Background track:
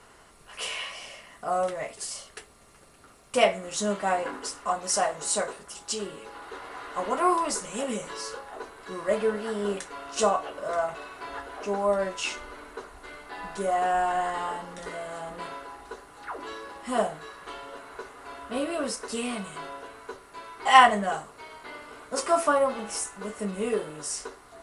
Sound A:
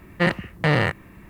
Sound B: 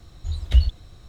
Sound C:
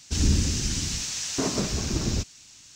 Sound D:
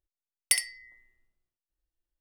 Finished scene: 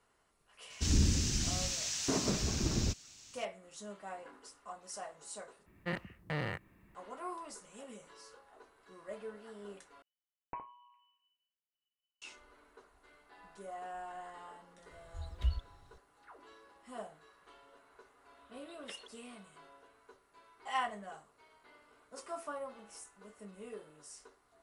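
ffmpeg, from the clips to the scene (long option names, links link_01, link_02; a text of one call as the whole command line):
ffmpeg -i bed.wav -i cue0.wav -i cue1.wav -i cue2.wav -i cue3.wav -filter_complex "[2:a]asplit=2[link_01][link_02];[0:a]volume=-19.5dB[link_03];[3:a]acontrast=39[link_04];[4:a]lowpass=frequency=2600:width_type=q:width=0.5098,lowpass=frequency=2600:width_type=q:width=0.6013,lowpass=frequency=2600:width_type=q:width=0.9,lowpass=frequency=2600:width_type=q:width=2.563,afreqshift=-3000[link_05];[link_02]highpass=frequency=460:width_type=q:width=0.5412,highpass=frequency=460:width_type=q:width=1.307,lowpass=frequency=3600:width_type=q:width=0.5176,lowpass=frequency=3600:width_type=q:width=0.7071,lowpass=frequency=3600:width_type=q:width=1.932,afreqshift=-81[link_06];[link_03]asplit=3[link_07][link_08][link_09];[link_07]atrim=end=5.664[link_10];[1:a]atrim=end=1.29,asetpts=PTS-STARTPTS,volume=-17.5dB[link_11];[link_08]atrim=start=6.946:end=10.024[link_12];[link_05]atrim=end=2.2,asetpts=PTS-STARTPTS,volume=-10dB[link_13];[link_09]atrim=start=12.216[link_14];[link_04]atrim=end=2.75,asetpts=PTS-STARTPTS,volume=-11.5dB,afade=type=in:duration=0.004:curve=hsin,afade=type=out:start_time=2.746:duration=0.004:curve=hsin,adelay=700[link_15];[link_01]atrim=end=1.08,asetpts=PTS-STARTPTS,volume=-16dB,afade=type=in:duration=0.004:curve=hsin,afade=type=out:start_time=1.076:duration=0.004:curve=hsin,adelay=14900[link_16];[link_06]atrim=end=1.08,asetpts=PTS-STARTPTS,volume=-9.5dB,afade=type=in:duration=0.004:curve=hsin,afade=type=out:start_time=1.076:duration=0.004:curve=hsin,adelay=18370[link_17];[link_10][link_11]acrossfade=duration=0.004:curve1=hsin:curve2=hsin[link_18];[link_18][link_12]acrossfade=duration=0.004:curve1=hsin:curve2=hsin[link_19];[link_19][link_13]acrossfade=duration=0.004:curve1=hsin:curve2=hsin[link_20];[link_20][link_14]acrossfade=duration=0.004:curve1=hsin:curve2=hsin[link_21];[link_21][link_15][link_16][link_17]amix=inputs=4:normalize=0" out.wav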